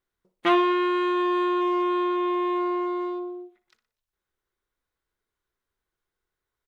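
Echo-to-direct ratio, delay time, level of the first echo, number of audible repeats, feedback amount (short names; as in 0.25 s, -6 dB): -13.5 dB, 60 ms, -14.0 dB, 3, 39%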